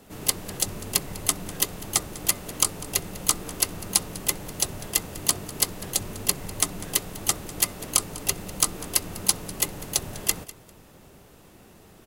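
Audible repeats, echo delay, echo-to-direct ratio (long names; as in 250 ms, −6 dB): 2, 199 ms, −18.5 dB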